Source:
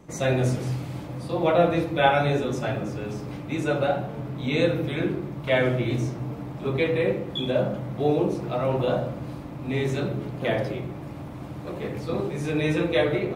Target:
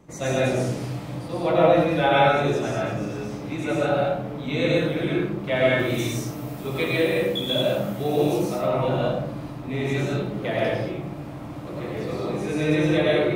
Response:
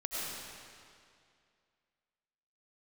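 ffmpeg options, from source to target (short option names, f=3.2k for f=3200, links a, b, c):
-filter_complex "[0:a]asettb=1/sr,asplit=3[a][b][c];[a]atrim=end=5.794[d];[b]atrim=start=5.79:end=8.49,asetpts=PTS-STARTPTS,afade=t=in:d=0.004:c=qsin,afade=t=out:st=2.696:d=0.004:c=qsin,aemphasis=mode=production:type=75fm[e];[c]atrim=start=8.486[f];[d][e]acrossfade=d=0.004:c1=hsin:c2=qsin[g];[g][f]acrossfade=d=0.004:c1=qsin:c2=hsin[h];[1:a]atrim=start_sample=2205,afade=t=out:st=0.28:d=0.01,atrim=end_sample=12789[i];[h][i]afir=irnorm=-1:irlink=0"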